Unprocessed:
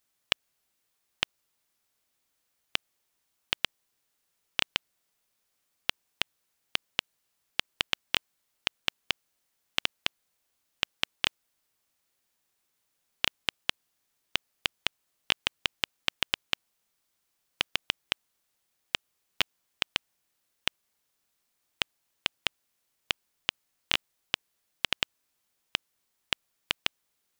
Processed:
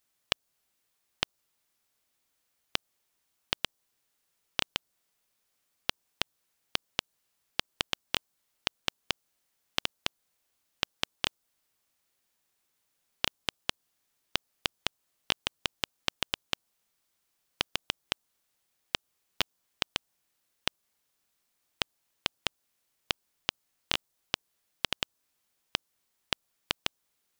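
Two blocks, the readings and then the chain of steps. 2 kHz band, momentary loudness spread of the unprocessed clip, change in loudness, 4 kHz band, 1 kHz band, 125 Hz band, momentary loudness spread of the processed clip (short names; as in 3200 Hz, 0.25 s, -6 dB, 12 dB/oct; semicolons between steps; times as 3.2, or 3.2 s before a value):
-4.0 dB, 5 LU, -2.5 dB, -2.5 dB, +0.5 dB, +2.0 dB, 4 LU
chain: dynamic EQ 2200 Hz, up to -6 dB, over -45 dBFS, Q 0.98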